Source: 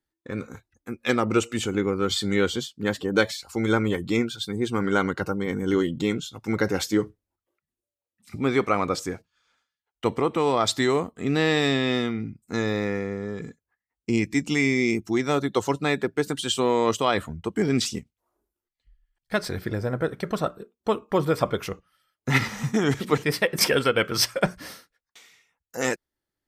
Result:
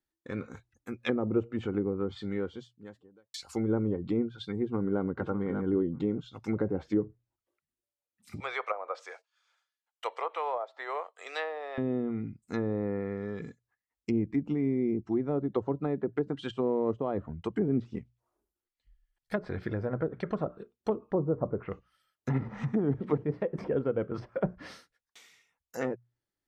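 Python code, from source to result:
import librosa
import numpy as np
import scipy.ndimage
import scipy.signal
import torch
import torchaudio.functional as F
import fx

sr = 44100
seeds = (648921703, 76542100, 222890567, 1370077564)

y = fx.studio_fade_out(x, sr, start_s=1.51, length_s=1.83)
y = fx.echo_throw(y, sr, start_s=4.58, length_s=0.45, ms=590, feedback_pct=15, wet_db=-12.0)
y = fx.steep_highpass(y, sr, hz=540.0, slope=36, at=(8.4, 11.78))
y = fx.lowpass(y, sr, hz=fx.line((21.11, 1100.0), (21.7, 2100.0)), slope=24, at=(21.11, 21.7), fade=0.02)
y = fx.hum_notches(y, sr, base_hz=60, count=2)
y = fx.env_lowpass_down(y, sr, base_hz=560.0, full_db=-20.5)
y = y * librosa.db_to_amplitude(-4.5)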